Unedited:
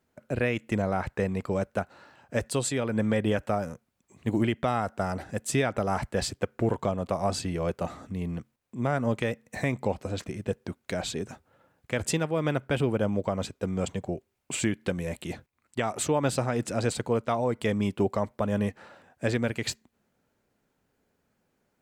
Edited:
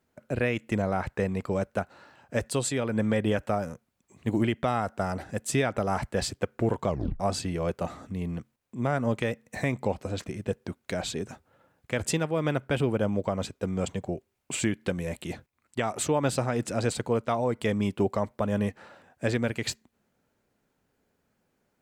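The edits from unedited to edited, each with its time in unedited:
6.88 tape stop 0.32 s

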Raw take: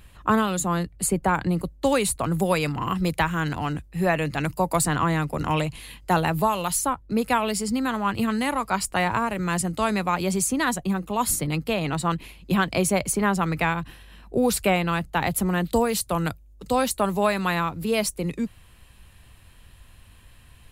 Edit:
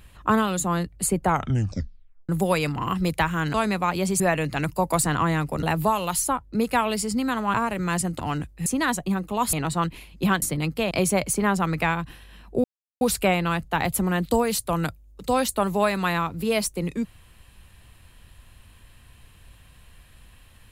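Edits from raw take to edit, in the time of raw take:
1.24 tape stop 1.05 s
3.54–4.01 swap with 9.79–10.45
5.44–6.2 cut
8.11–9.14 cut
11.32–11.81 move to 12.7
14.43 insert silence 0.37 s

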